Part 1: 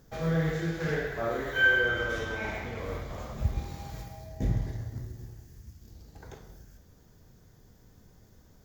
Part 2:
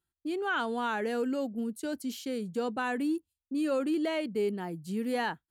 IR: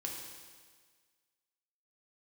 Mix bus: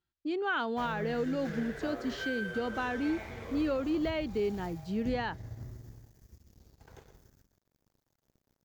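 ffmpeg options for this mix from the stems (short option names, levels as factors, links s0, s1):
-filter_complex "[0:a]acompressor=threshold=0.0282:ratio=6,aeval=exprs='sgn(val(0))*max(abs(val(0))-0.00251,0)':c=same,adelay=650,volume=0.596,asplit=2[s0][s1];[s1]volume=0.316[s2];[1:a]lowpass=f=5500:w=0.5412,lowpass=f=5500:w=1.3066,volume=1[s3];[s2]aecho=0:1:117:1[s4];[s0][s3][s4]amix=inputs=3:normalize=0,alimiter=limit=0.0708:level=0:latency=1:release=268"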